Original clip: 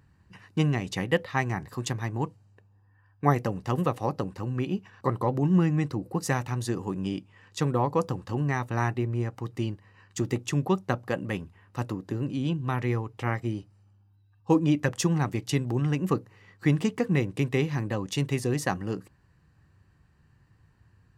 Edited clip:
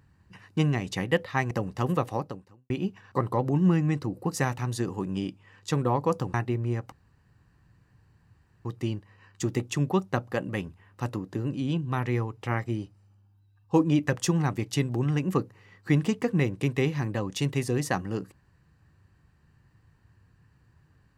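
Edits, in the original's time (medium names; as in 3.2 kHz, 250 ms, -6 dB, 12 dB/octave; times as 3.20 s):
1.51–3.40 s: delete
4.01–4.59 s: fade out quadratic
8.23–8.83 s: delete
9.41 s: insert room tone 1.73 s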